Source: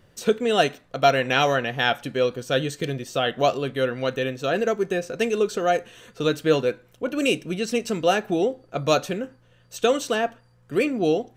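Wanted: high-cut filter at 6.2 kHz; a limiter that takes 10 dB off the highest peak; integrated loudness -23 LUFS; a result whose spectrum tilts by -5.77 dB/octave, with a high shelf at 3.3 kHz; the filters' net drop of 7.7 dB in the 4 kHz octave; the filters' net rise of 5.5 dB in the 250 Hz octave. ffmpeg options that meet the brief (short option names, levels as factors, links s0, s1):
-af "lowpass=6200,equalizer=f=250:t=o:g=7,highshelf=f=3300:g=-4.5,equalizer=f=4000:t=o:g=-7.5,volume=1.33,alimiter=limit=0.237:level=0:latency=1"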